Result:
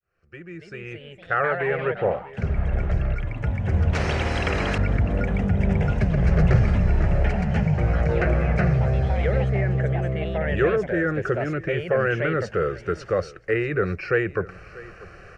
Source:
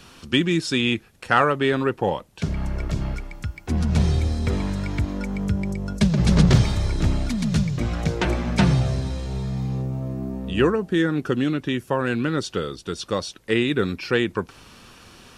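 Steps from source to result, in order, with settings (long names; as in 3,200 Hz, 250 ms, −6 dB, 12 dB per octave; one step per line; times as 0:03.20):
fade in at the beginning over 4.29 s
in parallel at −1 dB: compressor whose output falls as the input rises −26 dBFS
on the sum: phaser with its sweep stopped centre 940 Hz, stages 6
on a send: single-tap delay 640 ms −19.5 dB
on the sum: delay with pitch and tempo change per echo 336 ms, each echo +3 semitones, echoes 3, each echo −6 dB
low-pass filter 2,600 Hz 12 dB per octave
0:03.93–0:04.78: every bin compressed towards the loudest bin 2 to 1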